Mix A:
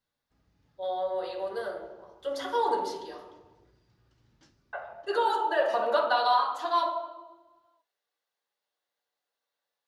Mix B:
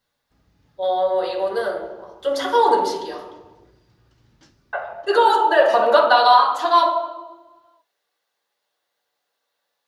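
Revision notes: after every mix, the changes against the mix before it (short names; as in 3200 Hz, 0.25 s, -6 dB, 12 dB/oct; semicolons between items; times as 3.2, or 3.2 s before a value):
speech +11.0 dB; background +8.0 dB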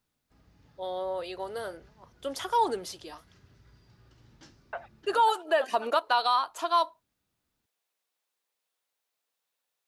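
reverb: off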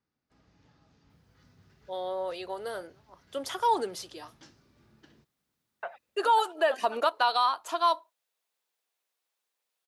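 speech: entry +1.10 s; master: add HPF 130 Hz 6 dB/oct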